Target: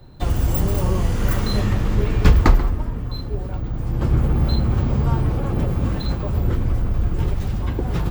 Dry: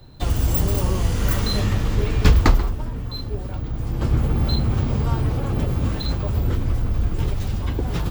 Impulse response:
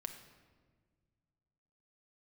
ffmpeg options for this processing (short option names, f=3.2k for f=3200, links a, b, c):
-filter_complex "[0:a]asplit=2[a][b];[1:a]atrim=start_sample=2205,lowpass=2.7k[c];[b][c]afir=irnorm=-1:irlink=0,volume=0dB[d];[a][d]amix=inputs=2:normalize=0,volume=-3dB"